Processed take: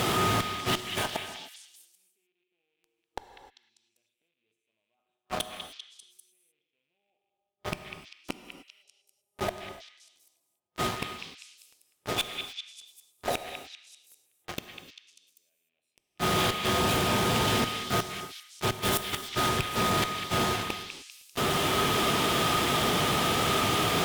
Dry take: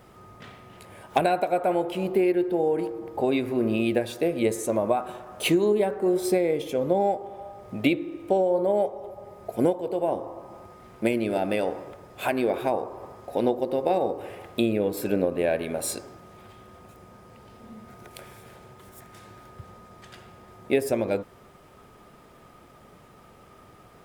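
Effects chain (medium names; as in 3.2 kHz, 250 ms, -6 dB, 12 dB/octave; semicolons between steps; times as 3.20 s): rattle on loud lows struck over -36 dBFS, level -16 dBFS; high-pass 88 Hz 12 dB/octave; peaking EQ 3.4 kHz +11.5 dB 0.74 oct; band-stop 540 Hz, Q 12; reverse; compression 8:1, threshold -33 dBFS, peak gain reduction 18.5 dB; reverse; inverted gate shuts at -36 dBFS, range -39 dB; in parallel at -3 dB: fuzz box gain 57 dB, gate -58 dBFS; on the sum: repeats whose band climbs or falls 197 ms, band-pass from 2.6 kHz, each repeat 0.7 oct, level -5 dB; gated-style reverb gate 330 ms flat, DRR 8.5 dB; trim -7 dB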